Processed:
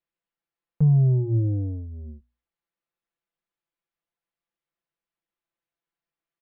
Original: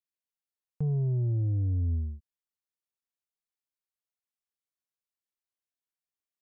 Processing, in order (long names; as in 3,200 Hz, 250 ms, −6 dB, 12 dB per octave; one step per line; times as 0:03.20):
high-frequency loss of the air 350 metres
mains-hum notches 60/120/180/240 Hz
comb filter 5.9 ms, depth 84%
level +7 dB